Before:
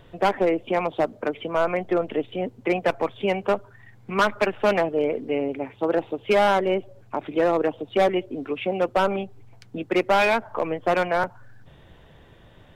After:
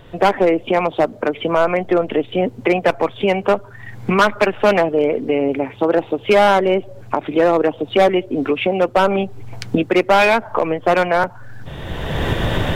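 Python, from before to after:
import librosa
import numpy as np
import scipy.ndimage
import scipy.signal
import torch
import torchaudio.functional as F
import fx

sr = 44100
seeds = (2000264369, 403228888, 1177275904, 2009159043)

y = fx.recorder_agc(x, sr, target_db=-15.5, rise_db_per_s=25.0, max_gain_db=30)
y = F.gain(torch.from_numpy(y), 6.5).numpy()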